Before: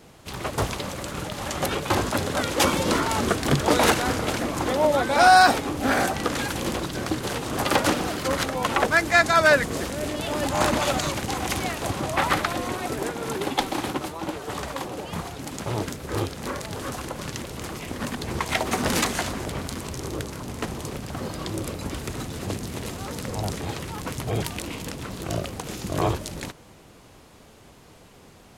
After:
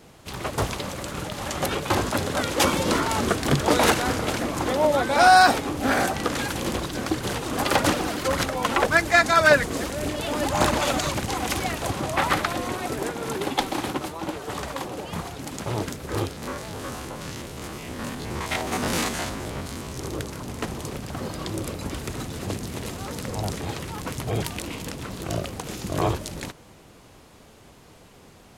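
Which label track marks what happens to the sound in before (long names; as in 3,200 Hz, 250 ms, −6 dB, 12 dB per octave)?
6.740000	11.900000	phase shifter 1.8 Hz, delay 4.4 ms, feedback 34%
16.320000	19.970000	spectrum averaged block by block every 50 ms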